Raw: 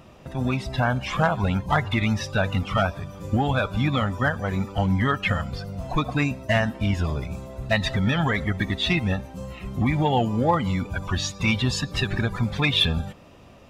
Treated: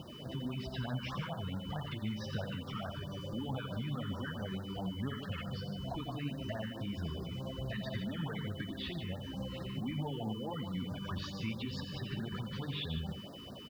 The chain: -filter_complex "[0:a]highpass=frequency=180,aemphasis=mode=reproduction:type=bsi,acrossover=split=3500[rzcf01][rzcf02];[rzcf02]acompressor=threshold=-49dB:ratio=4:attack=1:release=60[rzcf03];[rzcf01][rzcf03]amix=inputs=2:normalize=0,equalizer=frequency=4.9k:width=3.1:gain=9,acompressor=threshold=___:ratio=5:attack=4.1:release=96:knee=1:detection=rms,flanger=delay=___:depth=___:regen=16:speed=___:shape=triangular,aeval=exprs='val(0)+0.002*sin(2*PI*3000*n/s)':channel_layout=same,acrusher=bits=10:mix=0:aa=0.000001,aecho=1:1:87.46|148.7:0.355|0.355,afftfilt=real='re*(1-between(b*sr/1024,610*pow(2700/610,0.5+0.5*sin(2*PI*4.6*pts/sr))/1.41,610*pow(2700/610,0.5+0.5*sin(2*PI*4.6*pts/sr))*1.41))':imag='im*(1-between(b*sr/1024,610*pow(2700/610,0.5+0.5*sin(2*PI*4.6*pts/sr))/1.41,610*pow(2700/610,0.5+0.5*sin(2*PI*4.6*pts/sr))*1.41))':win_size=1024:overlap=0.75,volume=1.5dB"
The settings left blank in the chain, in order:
-36dB, 0.1, 9.4, 1.7